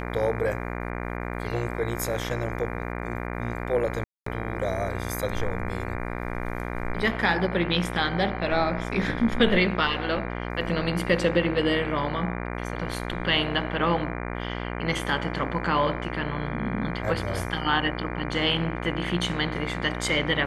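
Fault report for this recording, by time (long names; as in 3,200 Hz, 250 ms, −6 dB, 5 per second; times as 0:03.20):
mains buzz 60 Hz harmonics 40 −32 dBFS
0:04.04–0:04.26: drop-out 224 ms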